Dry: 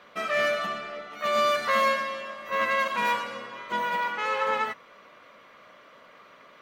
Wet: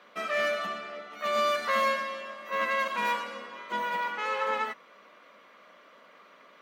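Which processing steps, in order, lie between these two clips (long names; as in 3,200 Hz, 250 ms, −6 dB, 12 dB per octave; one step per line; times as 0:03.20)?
Butterworth high-pass 170 Hz 36 dB per octave
level −3 dB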